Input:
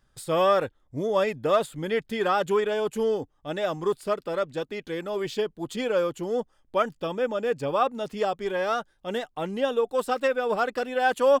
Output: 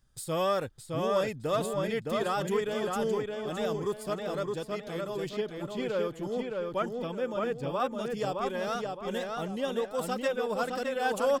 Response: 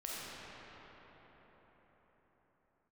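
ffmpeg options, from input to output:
-filter_complex "[0:a]asettb=1/sr,asplit=3[link_01][link_02][link_03];[link_01]atrim=end=5.294[link_04];[link_02]atrim=start=5.29:end=7.8,asetpts=PTS-STARTPTS,afade=type=in:duration=0.004:curve=qsin,afade=type=out:start_time=2.506:duration=0.004:curve=qsin,acrossover=split=3700[link_05][link_06];[link_06]acompressor=threshold=-56dB:ratio=4:attack=1:release=60[link_07];[link_05][link_07]amix=inputs=2:normalize=0[link_08];[link_03]atrim=start=7.796[link_09];[link_04][link_08]acrossfade=duration=0.004:curve1=hsin:curve2=qsin[link_10];[link_10][link_09]acrossfade=duration=0.004:curve1=qsin:curve2=hsin,bass=frequency=250:gain=7,treble=frequency=4000:gain=9,asplit=2[link_11][link_12];[link_12]adelay=615,lowpass=frequency=4200:poles=1,volume=-3dB,asplit=2[link_13][link_14];[link_14]adelay=615,lowpass=frequency=4200:poles=1,volume=0.37,asplit=2[link_15][link_16];[link_16]adelay=615,lowpass=frequency=4200:poles=1,volume=0.37,asplit=2[link_17][link_18];[link_18]adelay=615,lowpass=frequency=4200:poles=1,volume=0.37,asplit=2[link_19][link_20];[link_20]adelay=615,lowpass=frequency=4200:poles=1,volume=0.37[link_21];[link_11][link_13][link_15][link_17][link_19][link_21]amix=inputs=6:normalize=0,volume=-7.5dB"

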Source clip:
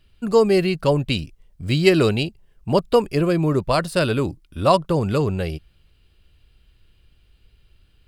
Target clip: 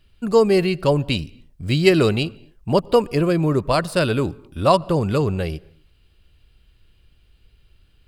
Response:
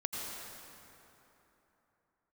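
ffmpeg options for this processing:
-filter_complex "[0:a]asplit=2[link_01][link_02];[1:a]atrim=start_sample=2205,afade=type=out:start_time=0.32:duration=0.01,atrim=end_sample=14553,highshelf=frequency=4700:gain=-10.5[link_03];[link_02][link_03]afir=irnorm=-1:irlink=0,volume=-22dB[link_04];[link_01][link_04]amix=inputs=2:normalize=0"

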